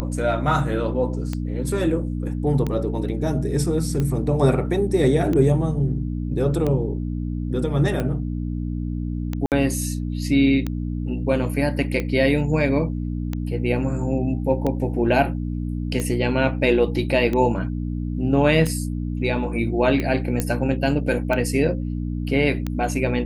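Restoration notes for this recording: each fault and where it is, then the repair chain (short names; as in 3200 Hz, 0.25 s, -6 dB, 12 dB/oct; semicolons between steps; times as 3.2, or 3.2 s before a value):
hum 60 Hz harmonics 5 -26 dBFS
tick 45 rpm -13 dBFS
9.46–9.52 gap 58 ms
20.4 pop -8 dBFS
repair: de-click; de-hum 60 Hz, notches 5; interpolate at 9.46, 58 ms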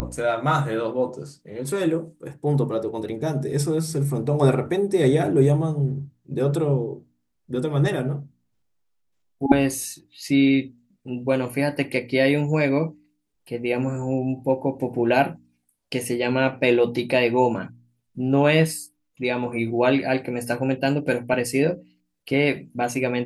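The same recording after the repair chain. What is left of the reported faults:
none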